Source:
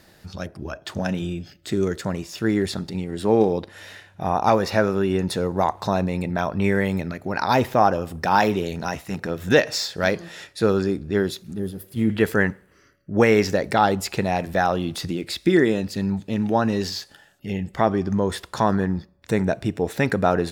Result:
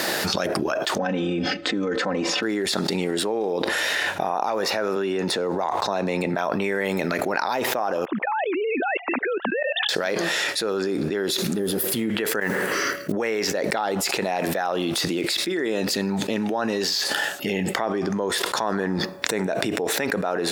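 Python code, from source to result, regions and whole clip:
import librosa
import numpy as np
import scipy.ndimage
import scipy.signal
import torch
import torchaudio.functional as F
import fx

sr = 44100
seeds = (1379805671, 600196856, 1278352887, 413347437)

y = fx.chain(x, sr, fx.spacing_loss(db_at_10k=28),
    fx.comb(ms=3.9, depth=0.89), at=(0.98, 2.43))
y = fx.chain(y, sr, fx.peak_eq(hz=12000.0, db=-9.5, octaves=0.62),
    fx.band_squash(depth_pct=40), at=(4.96, 6.34))
y = fx.chain(y, sr, fx.sine_speech(),
    fx.highpass(hz=430.0, slope=6),
    fx.level_steps(step_db=23), at=(8.05, 9.89))
y = fx.chain(y, sr, fx.over_compress(threshold_db=-27.0, ratio=-0.5),
    fx.mod_noise(seeds[0], snr_db=28), at=(12.4, 13.12))
y = scipy.signal.sosfilt(scipy.signal.butter(2, 350.0, 'highpass', fs=sr, output='sos'), y)
y = fx.env_flatten(y, sr, amount_pct=100)
y = F.gain(torch.from_numpy(y), -10.0).numpy()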